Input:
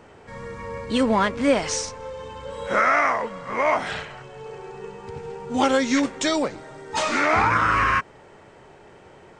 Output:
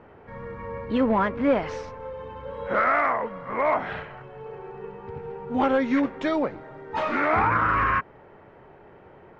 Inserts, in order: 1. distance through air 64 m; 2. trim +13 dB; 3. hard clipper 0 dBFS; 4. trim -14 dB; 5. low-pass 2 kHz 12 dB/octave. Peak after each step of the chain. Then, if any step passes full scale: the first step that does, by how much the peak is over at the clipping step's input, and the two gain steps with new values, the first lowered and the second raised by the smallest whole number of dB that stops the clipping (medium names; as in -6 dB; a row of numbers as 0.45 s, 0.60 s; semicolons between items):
-7.5 dBFS, +5.5 dBFS, 0.0 dBFS, -14.0 dBFS, -13.5 dBFS; step 2, 5.5 dB; step 2 +7 dB, step 4 -8 dB